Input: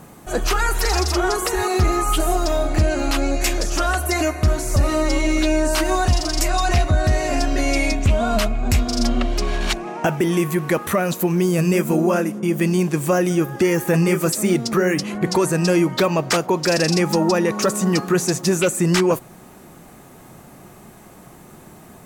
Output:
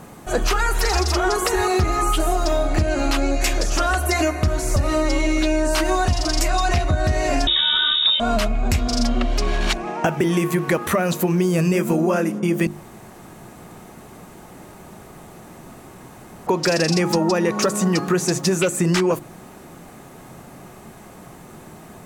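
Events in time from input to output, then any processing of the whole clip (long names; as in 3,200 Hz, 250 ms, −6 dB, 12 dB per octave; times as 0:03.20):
0:07.47–0:08.20: voice inversion scrambler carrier 3,700 Hz
0:12.67–0:16.47: fill with room tone
whole clip: high-shelf EQ 10,000 Hz −6.5 dB; mains-hum notches 50/100/150/200/250/300/350 Hz; downward compressor, threshold −18 dBFS; level +3 dB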